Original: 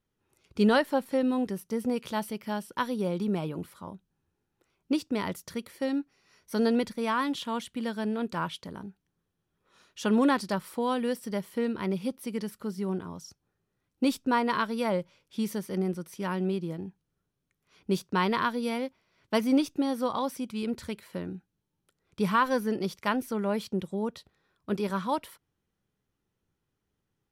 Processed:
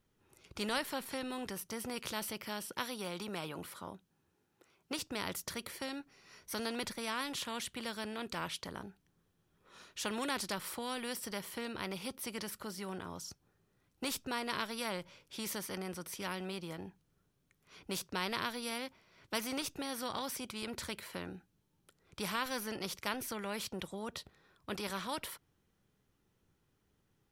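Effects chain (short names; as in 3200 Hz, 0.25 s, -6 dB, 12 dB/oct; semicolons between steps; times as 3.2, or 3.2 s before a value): 2.65–4.99 HPF 180 Hz 6 dB/oct; spectral compressor 2:1; gain -5.5 dB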